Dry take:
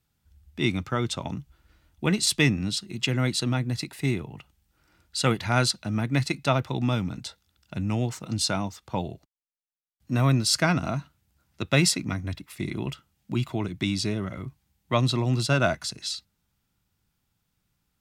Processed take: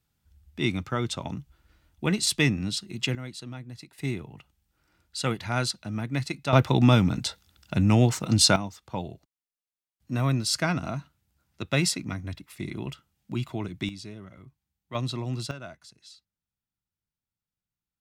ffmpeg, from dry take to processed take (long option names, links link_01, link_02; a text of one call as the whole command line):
ffmpeg -i in.wav -af "asetnsamples=nb_out_samples=441:pad=0,asendcmd='3.15 volume volume -13.5dB;3.98 volume volume -4.5dB;6.53 volume volume 7dB;8.56 volume volume -3.5dB;13.89 volume volume -13.5dB;14.95 volume volume -7dB;15.51 volume volume -18.5dB',volume=-1.5dB" out.wav